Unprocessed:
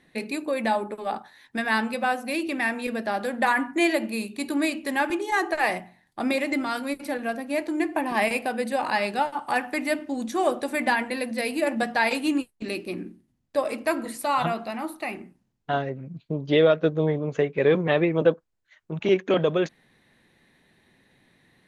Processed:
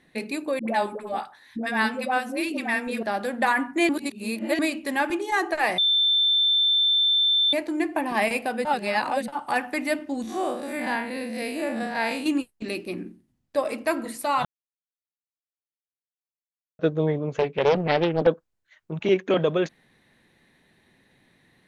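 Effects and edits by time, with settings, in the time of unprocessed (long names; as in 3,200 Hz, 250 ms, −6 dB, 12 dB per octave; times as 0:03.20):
0:00.59–0:03.03: all-pass dispersion highs, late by 92 ms, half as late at 590 Hz
0:03.89–0:04.59: reverse
0:05.78–0:07.53: beep over 3,550 Hz −17.5 dBFS
0:08.65–0:09.28: reverse
0:10.22–0:12.26: spectrum smeared in time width 104 ms
0:14.45–0:16.79: silence
0:17.32–0:18.27: highs frequency-modulated by the lows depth 0.5 ms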